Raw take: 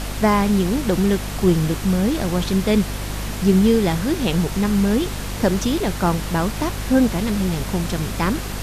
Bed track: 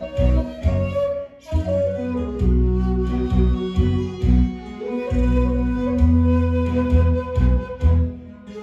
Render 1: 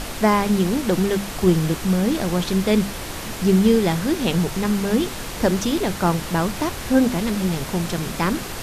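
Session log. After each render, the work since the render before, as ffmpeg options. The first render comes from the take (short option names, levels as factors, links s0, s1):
-af "bandreject=f=50:t=h:w=6,bandreject=f=100:t=h:w=6,bandreject=f=150:t=h:w=6,bandreject=f=200:t=h:w=6,bandreject=f=250:t=h:w=6"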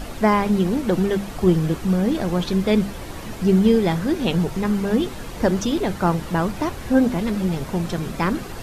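-af "afftdn=nr=9:nf=-32"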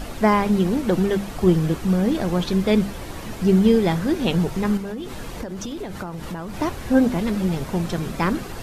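-filter_complex "[0:a]asettb=1/sr,asplit=3[s0][s1][s2];[s0]atrim=end=4.774[s3];[s1]atrim=start=4.77:end=6.58,asetpts=PTS-STARTPTS,afade=t=in:d=0.004:c=qsin,afade=t=out:st=1.806:d=0.004:c=qsin,acompressor=threshold=0.0501:ratio=16:attack=3.2:release=140:knee=1:detection=peak[s4];[s2]atrim=start=6.576[s5];[s3][s4]acrossfade=d=0.004:c1=hsin:c2=qsin[s6];[s6][s5]acrossfade=d=0.004:c1=qsin:c2=hsin"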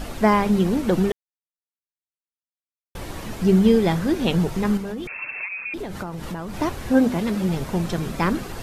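-filter_complex "[0:a]asettb=1/sr,asplit=3[s0][s1][s2];[s0]atrim=end=5.074[s3];[s1]atrim=start=5.07:end=5.74,asetpts=PTS-STARTPTS,afade=t=in:d=0.004:c=qsin,afade=t=out:st=0.666:d=0.004:c=qsin,lowpass=f=2300:t=q:w=0.5098,lowpass=f=2300:t=q:w=0.6013,lowpass=f=2300:t=q:w=0.9,lowpass=f=2300:t=q:w=2.563,afreqshift=-2700[s4];[s2]atrim=start=5.736[s5];[s3][s4]acrossfade=d=0.004:c1=hsin:c2=qsin[s6];[s6][s5]acrossfade=d=0.004:c1=qsin:c2=hsin,asettb=1/sr,asplit=3[s7][s8][s9];[s7]atrim=end=6.914[s10];[s8]atrim=start=6.91:end=7.49,asetpts=PTS-STARTPTS,afade=t=in:d=0.004:c=qsin,afade=t=out:st=0.576:d=0.004:c=qsin,highpass=f=85:p=1[s11];[s9]atrim=start=7.486[s12];[s10][s11]acrossfade=d=0.004:c1=hsin:c2=qsin[s13];[s13][s12]acrossfade=d=0.004:c1=qsin:c2=hsin,asplit=3[s14][s15][s16];[s14]atrim=end=1.12,asetpts=PTS-STARTPTS,afade=t=out:st=1.116:d=0.004:c=hsin[s17];[s15]atrim=start=1.12:end=2.95,asetpts=PTS-STARTPTS,volume=0[s18];[s16]atrim=start=2.95,asetpts=PTS-STARTPTS,afade=t=in:d=0.004:c=hsin[s19];[s17][s18][s19]concat=n=3:v=0:a=1"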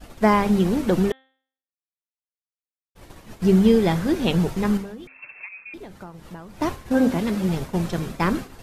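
-af "agate=range=0.0224:threshold=0.0708:ratio=3:detection=peak,bandreject=f=263.9:t=h:w=4,bandreject=f=527.8:t=h:w=4,bandreject=f=791.7:t=h:w=4,bandreject=f=1055.6:t=h:w=4,bandreject=f=1319.5:t=h:w=4,bandreject=f=1583.4:t=h:w=4,bandreject=f=1847.3:t=h:w=4,bandreject=f=2111.2:t=h:w=4,bandreject=f=2375.1:t=h:w=4,bandreject=f=2639:t=h:w=4,bandreject=f=2902.9:t=h:w=4,bandreject=f=3166.8:t=h:w=4,bandreject=f=3430.7:t=h:w=4,bandreject=f=3694.6:t=h:w=4,bandreject=f=3958.5:t=h:w=4,bandreject=f=4222.4:t=h:w=4"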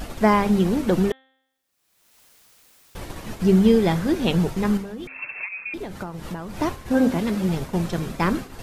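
-af "acompressor=mode=upward:threshold=0.0708:ratio=2.5"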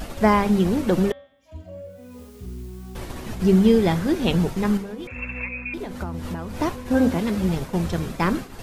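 -filter_complex "[1:a]volume=0.126[s0];[0:a][s0]amix=inputs=2:normalize=0"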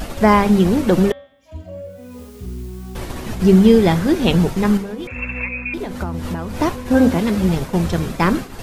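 -af "volume=1.88,alimiter=limit=0.891:level=0:latency=1"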